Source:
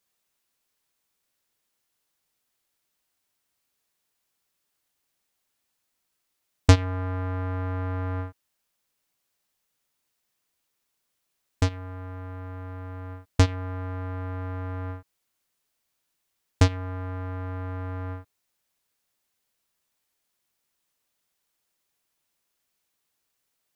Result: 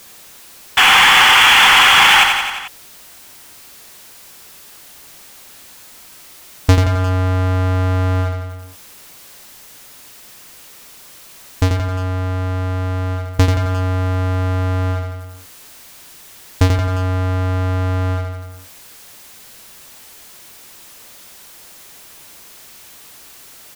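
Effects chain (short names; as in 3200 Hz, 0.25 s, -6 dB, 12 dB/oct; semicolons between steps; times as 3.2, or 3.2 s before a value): painted sound noise, 0.77–2.24, 740–3500 Hz -14 dBFS; feedback echo 88 ms, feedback 43%, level -9.5 dB; power-law curve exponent 0.5; gain -1 dB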